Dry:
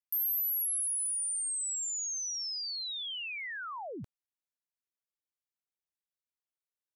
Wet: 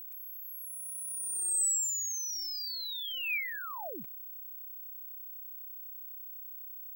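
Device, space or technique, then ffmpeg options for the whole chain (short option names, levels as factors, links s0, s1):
old television with a line whistle: -af "highpass=f=180:w=0.5412,highpass=f=180:w=1.3066,equalizer=f=680:t=q:w=4:g=3,equalizer=f=2400:t=q:w=4:g=10,equalizer=f=8000:t=q:w=4:g=10,lowpass=f=8700:w=0.5412,lowpass=f=8700:w=1.3066,aeval=exprs='val(0)+0.01*sin(2*PI*15734*n/s)':c=same,volume=0.794"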